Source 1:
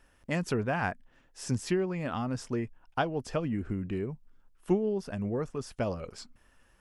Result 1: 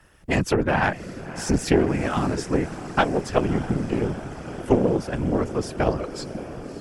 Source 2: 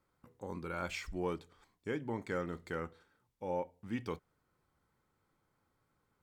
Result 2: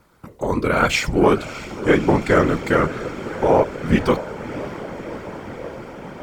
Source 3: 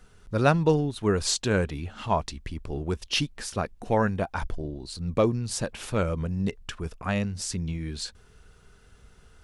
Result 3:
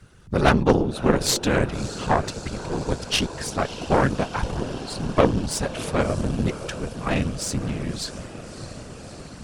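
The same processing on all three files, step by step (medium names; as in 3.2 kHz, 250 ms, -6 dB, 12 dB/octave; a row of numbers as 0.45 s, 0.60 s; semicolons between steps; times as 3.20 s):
echo that smears into a reverb 618 ms, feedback 78%, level -14 dB; whisper effect; Chebyshev shaper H 4 -12 dB, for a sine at -7 dBFS; peak normalisation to -2 dBFS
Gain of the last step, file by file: +8.5 dB, +21.5 dB, +3.5 dB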